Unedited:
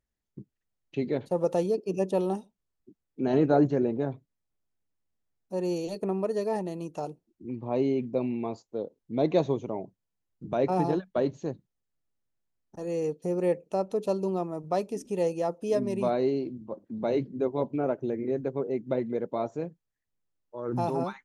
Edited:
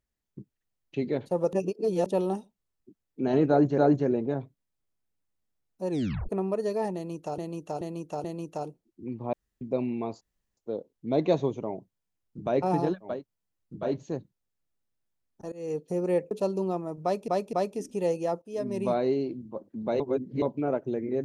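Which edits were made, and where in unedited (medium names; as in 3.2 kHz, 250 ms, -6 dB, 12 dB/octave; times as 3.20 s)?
1.53–2.06 s: reverse
3.49–3.78 s: loop, 2 plays
5.61 s: tape stop 0.39 s
6.66–7.09 s: loop, 4 plays
7.75–8.03 s: room tone
8.63 s: insert room tone 0.36 s
9.82–10.54 s: copy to 11.18 s, crossfade 0.24 s
12.86–13.12 s: fade in, from -22.5 dB
13.65–13.97 s: delete
14.69–14.94 s: loop, 3 plays
15.58–15.96 s: fade in, from -18 dB
17.16–17.58 s: reverse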